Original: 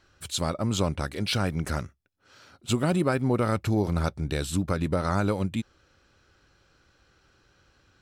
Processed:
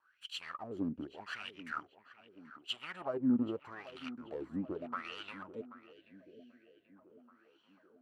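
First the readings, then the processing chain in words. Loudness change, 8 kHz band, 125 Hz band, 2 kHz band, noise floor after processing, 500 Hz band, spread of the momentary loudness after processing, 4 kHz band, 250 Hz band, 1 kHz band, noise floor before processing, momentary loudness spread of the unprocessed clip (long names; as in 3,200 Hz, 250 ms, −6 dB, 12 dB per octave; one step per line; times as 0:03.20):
−12.5 dB, below −25 dB, −24.5 dB, −9.5 dB, −70 dBFS, −14.5 dB, 24 LU, −10.0 dB, −9.0 dB, −12.5 dB, −65 dBFS, 8 LU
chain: lower of the sound and its delayed copy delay 0.68 ms
LFO wah 0.82 Hz 240–3,100 Hz, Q 7.7
low-shelf EQ 150 Hz −3.5 dB
on a send: tape delay 784 ms, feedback 65%, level −14 dB, low-pass 1,800 Hz
on the sum: gain on a spectral selection 0:05.93–0:06.96, 720–1,500 Hz −19 dB
level +3 dB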